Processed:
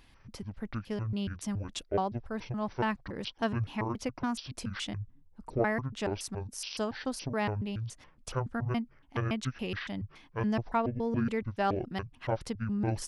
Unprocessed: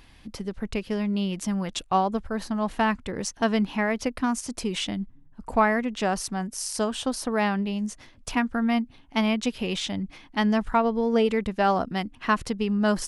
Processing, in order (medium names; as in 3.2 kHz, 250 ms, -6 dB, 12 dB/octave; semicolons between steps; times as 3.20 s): pitch shift switched off and on -11 st, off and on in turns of 141 ms; trim -7 dB